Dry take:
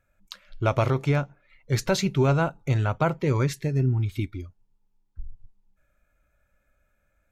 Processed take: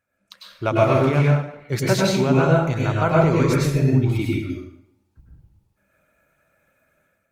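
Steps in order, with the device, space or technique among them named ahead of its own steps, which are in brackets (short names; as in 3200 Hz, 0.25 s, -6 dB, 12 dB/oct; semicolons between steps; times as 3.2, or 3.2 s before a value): far-field microphone of a smart speaker (reverb RT60 0.70 s, pre-delay 93 ms, DRR -3.5 dB; HPF 140 Hz 12 dB/oct; AGC gain up to 9 dB; gain -3 dB; Opus 32 kbps 48000 Hz)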